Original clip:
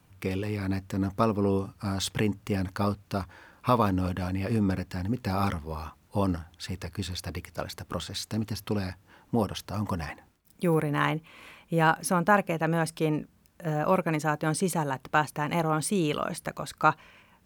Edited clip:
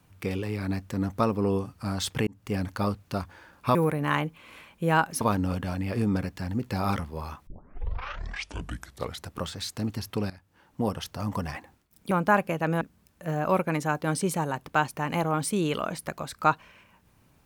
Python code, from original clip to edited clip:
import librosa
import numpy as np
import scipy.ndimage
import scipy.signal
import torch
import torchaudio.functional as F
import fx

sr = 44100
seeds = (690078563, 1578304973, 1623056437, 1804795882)

y = fx.edit(x, sr, fx.fade_in_span(start_s=2.27, length_s=0.28),
    fx.tape_start(start_s=6.01, length_s=1.89),
    fx.fade_in_from(start_s=8.84, length_s=0.68, floor_db=-16.5),
    fx.move(start_s=10.65, length_s=1.46, to_s=3.75),
    fx.cut(start_s=12.81, length_s=0.39), tone=tone)